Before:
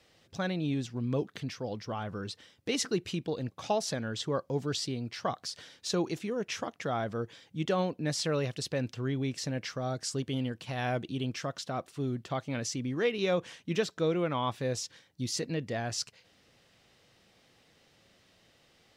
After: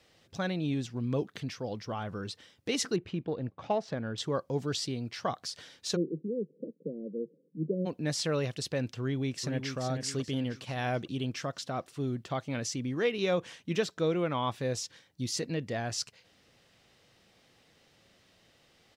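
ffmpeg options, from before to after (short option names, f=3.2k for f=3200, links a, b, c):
-filter_complex "[0:a]asettb=1/sr,asplit=3[a][b][c];[a]atrim=end=2.964[d];[b]atrim=start=2.96:end=4.18,asetpts=PTS-STARTPTS,afade=t=in:d=0.004:c=qsin,afade=t=out:st=1.216:d=0.004:c=qsin,adynamicsmooth=sensitivity=1:basefreq=2.1k[e];[c]atrim=start=4.176[f];[d][e]acrossfade=d=0.004:c1=hsin:c2=qsin[g];[g][f]acrossfade=d=0.004:c1=qsin:c2=hsin,asplit=3[h][i][j];[h]afade=t=out:st=5.95:d=0.02[k];[i]asuperpass=centerf=280:order=20:qfactor=0.73,afade=t=in:st=5.95:d=0.02,afade=t=out:st=7.85:d=0.02[l];[j]afade=t=in:st=7.85:d=0.02[m];[k][l][m]amix=inputs=3:normalize=0,asplit=2[n][o];[o]afade=t=in:st=9:d=0.01,afade=t=out:st=9.78:d=0.01,aecho=0:1:430|860|1290|1720|2150:0.446684|0.178673|0.0714694|0.0285877|0.0114351[p];[n][p]amix=inputs=2:normalize=0"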